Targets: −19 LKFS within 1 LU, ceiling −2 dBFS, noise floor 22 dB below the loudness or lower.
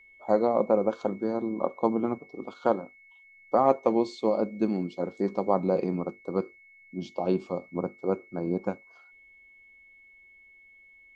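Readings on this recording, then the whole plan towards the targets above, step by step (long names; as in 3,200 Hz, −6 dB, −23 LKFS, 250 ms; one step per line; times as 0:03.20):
interfering tone 2,200 Hz; level of the tone −53 dBFS; integrated loudness −28.5 LKFS; sample peak −7.0 dBFS; target loudness −19.0 LKFS
→ notch filter 2,200 Hz, Q 30
level +9.5 dB
brickwall limiter −2 dBFS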